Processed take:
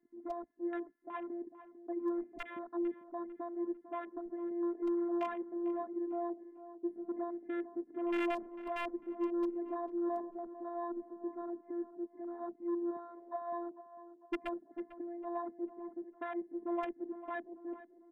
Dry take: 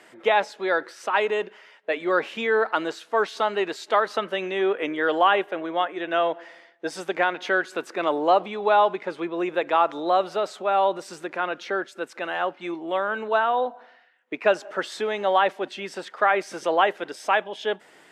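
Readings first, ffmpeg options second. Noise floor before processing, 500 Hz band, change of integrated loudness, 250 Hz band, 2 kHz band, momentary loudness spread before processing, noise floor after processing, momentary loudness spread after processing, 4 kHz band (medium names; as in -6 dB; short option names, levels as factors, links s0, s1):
-54 dBFS, -16.0 dB, -15.5 dB, -4.0 dB, -24.0 dB, 10 LU, -64 dBFS, 10 LU, -26.5 dB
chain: -filter_complex "[0:a]firequalizer=gain_entry='entry(280,0);entry(480,-21);entry(840,-23);entry(1300,-25)':delay=0.05:min_phase=1,asoftclip=type=tanh:threshold=0.0237,highpass=190,acontrast=36,asuperstop=centerf=4800:order=20:qfactor=0.65,aecho=1:1:1.1:0.4,aeval=exprs='(mod(22.4*val(0)+1,2)-1)/22.4':c=same,afftfilt=real='hypot(re,im)*cos(PI*b)':imag='0':win_size=512:overlap=0.75,afwtdn=0.00501,highshelf=f=8100:g=-12,asplit=2[s0][s1];[s1]adelay=448,lowpass=f=1600:p=1,volume=0.224,asplit=2[s2][s3];[s3]adelay=448,lowpass=f=1600:p=1,volume=0.48,asplit=2[s4][s5];[s5]adelay=448,lowpass=f=1600:p=1,volume=0.48,asplit=2[s6][s7];[s7]adelay=448,lowpass=f=1600:p=1,volume=0.48,asplit=2[s8][s9];[s9]adelay=448,lowpass=f=1600:p=1,volume=0.48[s10];[s2][s4][s6][s8][s10]amix=inputs=5:normalize=0[s11];[s0][s11]amix=inputs=2:normalize=0,volume=1.26"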